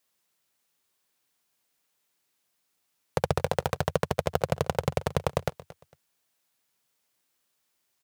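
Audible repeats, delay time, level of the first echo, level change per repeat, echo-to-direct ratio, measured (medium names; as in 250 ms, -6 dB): 2, 227 ms, -18.0 dB, -12.0 dB, -17.5 dB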